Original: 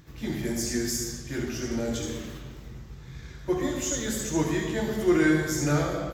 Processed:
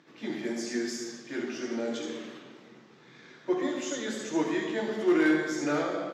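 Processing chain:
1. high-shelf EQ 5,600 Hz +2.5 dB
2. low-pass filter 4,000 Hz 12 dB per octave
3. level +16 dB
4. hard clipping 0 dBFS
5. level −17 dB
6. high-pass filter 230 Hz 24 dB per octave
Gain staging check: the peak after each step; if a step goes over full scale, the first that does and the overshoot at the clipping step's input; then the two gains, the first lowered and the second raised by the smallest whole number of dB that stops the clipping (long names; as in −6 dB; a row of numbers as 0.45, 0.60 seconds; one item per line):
−11.0, −11.0, +5.0, 0.0, −17.0, −14.0 dBFS
step 3, 5.0 dB
step 3 +11 dB, step 5 −12 dB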